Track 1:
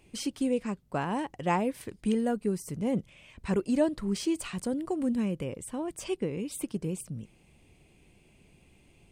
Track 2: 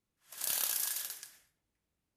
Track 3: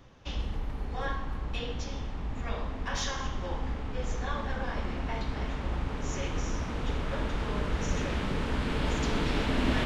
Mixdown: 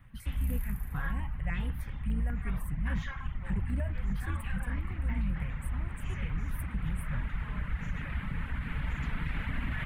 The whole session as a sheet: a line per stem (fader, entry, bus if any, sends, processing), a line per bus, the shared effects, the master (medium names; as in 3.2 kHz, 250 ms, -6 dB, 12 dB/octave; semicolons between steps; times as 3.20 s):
+0.5 dB, 0.00 s, no send, octave divider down 2 oct, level +1 dB; de-hum 88.4 Hz, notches 36; stepped phaser 10 Hz 590–6200 Hz
-1.5 dB, 0.00 s, no send, auto duck -18 dB, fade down 0.95 s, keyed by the first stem
+0.5 dB, 0.00 s, no send, reverb removal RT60 0.76 s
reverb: none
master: FFT filter 160 Hz 0 dB, 390 Hz -21 dB, 2 kHz +1 dB, 5.5 kHz -26 dB, 12 kHz -2 dB; peak limiter -23.5 dBFS, peak gain reduction 6 dB